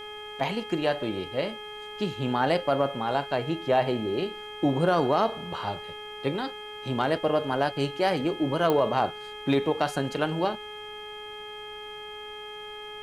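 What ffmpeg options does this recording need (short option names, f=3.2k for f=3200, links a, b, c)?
-af "adeclick=t=4,bandreject=f=421.5:t=h:w=4,bandreject=f=843:t=h:w=4,bandreject=f=1.2645k:t=h:w=4,bandreject=f=1.686k:t=h:w=4,bandreject=f=2.1075k:t=h:w=4,bandreject=f=2.529k:t=h:w=4,bandreject=f=3.2k:w=30,agate=range=-21dB:threshold=-32dB"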